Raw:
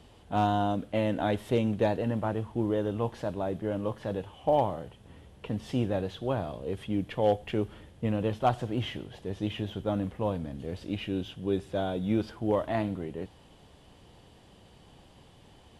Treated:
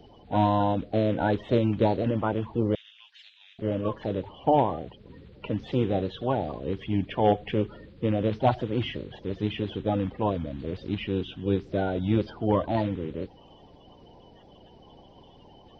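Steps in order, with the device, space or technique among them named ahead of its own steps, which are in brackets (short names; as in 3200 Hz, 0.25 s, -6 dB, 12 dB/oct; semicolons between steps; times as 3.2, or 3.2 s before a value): clip after many re-uploads (LPF 4300 Hz 24 dB/oct; bin magnitudes rounded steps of 30 dB); 2.75–3.59 inverse Chebyshev high-pass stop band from 410 Hz, stop band 80 dB; gain +4 dB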